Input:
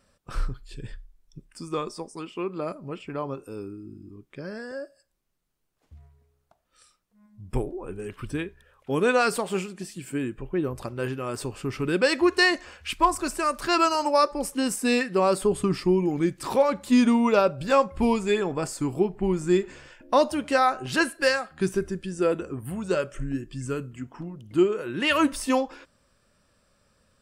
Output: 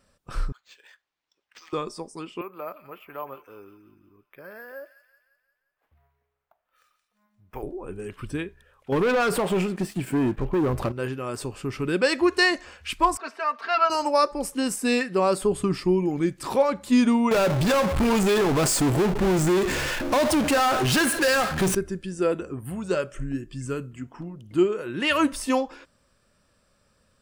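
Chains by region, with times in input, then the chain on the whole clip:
0:00.52–0:01.73: high-pass filter 740 Hz 24 dB per octave + linearly interpolated sample-rate reduction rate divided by 4×
0:02.41–0:07.63: three-way crossover with the lows and the highs turned down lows −16 dB, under 540 Hz, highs −18 dB, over 2,800 Hz + delay with a high-pass on its return 175 ms, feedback 53%, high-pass 2,200 Hz, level −7 dB + bad sample-rate conversion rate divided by 3×, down none, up hold
0:08.92–0:10.92: parametric band 6,900 Hz −11.5 dB 2 octaves + downward compressor 2.5 to 1, threshold −25 dBFS + leveller curve on the samples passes 3
0:13.17–0:13.90: high-pass filter 610 Hz + high-frequency loss of the air 280 metres + comb filter 4.4 ms, depth 91%
0:17.31–0:21.75: downward compressor 4 to 1, threshold −24 dBFS + power curve on the samples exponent 0.35
whole clip: no processing

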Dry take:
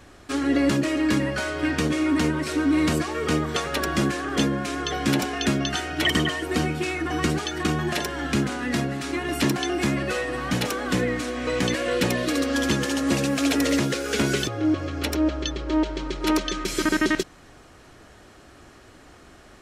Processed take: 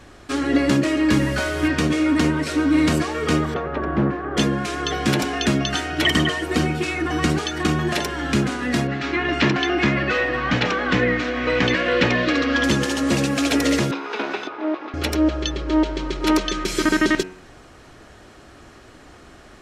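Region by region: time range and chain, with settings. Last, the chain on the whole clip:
0:01.11–0:01.68: linear delta modulator 64 kbit/s, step −32.5 dBFS + low-shelf EQ 76 Hz +9 dB
0:03.54–0:04.37: low-pass filter 1,200 Hz + highs frequency-modulated by the lows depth 0.24 ms
0:08.87–0:12.64: Bessel low-pass filter 4,000 Hz, order 8 + dynamic equaliser 2,000 Hz, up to +6 dB, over −41 dBFS, Q 0.73
0:13.91–0:14.94: lower of the sound and its delayed copy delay 0.8 ms + high-pass filter 320 Hz 24 dB per octave + high-frequency loss of the air 280 metres
whole clip: high-shelf EQ 9,700 Hz −7 dB; hum removal 92.19 Hz, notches 32; level +4 dB

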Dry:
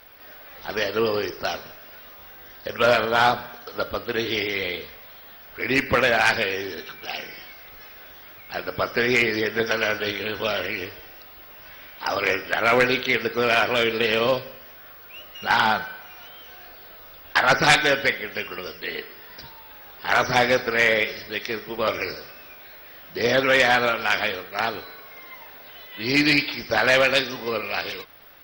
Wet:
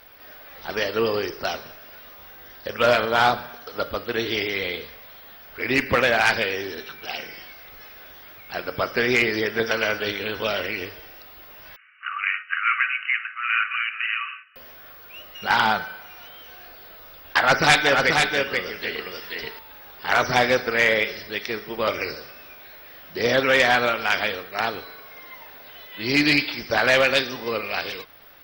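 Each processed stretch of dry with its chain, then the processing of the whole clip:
0:11.76–0:14.56: noise gate −36 dBFS, range −7 dB + linear-phase brick-wall band-pass 1,100–3,000 Hz
0:17.38–0:19.59: single-tap delay 484 ms −4 dB + one half of a high-frequency compander encoder only
whole clip: no processing

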